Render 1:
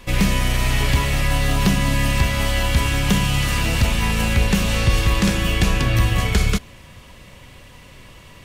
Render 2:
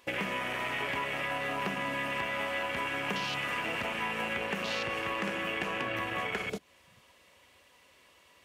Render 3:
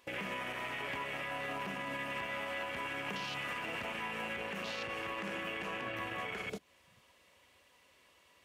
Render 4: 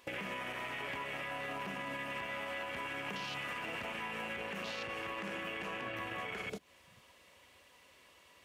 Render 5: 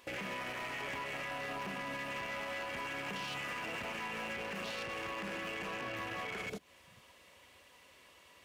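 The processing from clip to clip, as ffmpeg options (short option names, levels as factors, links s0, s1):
-af "afwtdn=0.0447,highpass=400,acompressor=threshold=0.0158:ratio=3,volume=1.33"
-af "alimiter=level_in=1.19:limit=0.0631:level=0:latency=1:release=34,volume=0.841,volume=0.596"
-af "acompressor=threshold=0.00708:ratio=2.5,volume=1.5"
-af "asoftclip=type=hard:threshold=0.0133,volume=1.19"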